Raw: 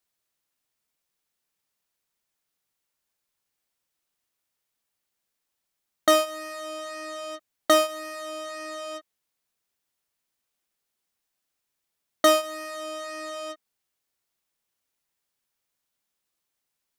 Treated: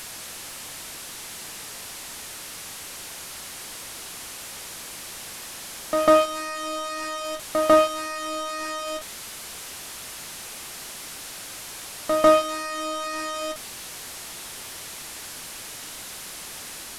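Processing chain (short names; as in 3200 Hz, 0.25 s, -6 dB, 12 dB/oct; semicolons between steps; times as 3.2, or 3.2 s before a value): delta modulation 64 kbps, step -36.5 dBFS; reverse echo 0.147 s -8 dB; gain +5.5 dB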